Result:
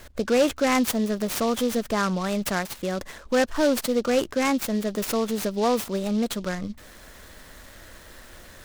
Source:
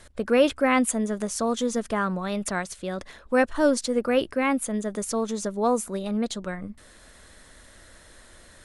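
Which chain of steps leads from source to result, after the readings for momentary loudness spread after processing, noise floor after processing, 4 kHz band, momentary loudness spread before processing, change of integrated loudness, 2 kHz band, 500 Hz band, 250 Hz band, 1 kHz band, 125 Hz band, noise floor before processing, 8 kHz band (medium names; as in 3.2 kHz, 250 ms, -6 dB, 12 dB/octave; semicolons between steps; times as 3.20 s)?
8 LU, -47 dBFS, +4.0 dB, 11 LU, +0.5 dB, 0.0 dB, +0.5 dB, +1.0 dB, 0.0 dB, +2.5 dB, -52 dBFS, -0.5 dB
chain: in parallel at -2.5 dB: compression, threshold -30 dBFS, peak gain reduction 15 dB; on the sum: saturation -12.5 dBFS, distortion -18 dB; delay time shaken by noise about 3.9 kHz, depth 0.038 ms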